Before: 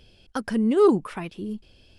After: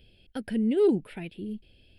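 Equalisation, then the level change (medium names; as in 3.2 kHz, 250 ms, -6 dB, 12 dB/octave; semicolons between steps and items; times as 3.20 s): static phaser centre 2.7 kHz, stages 4; -3.0 dB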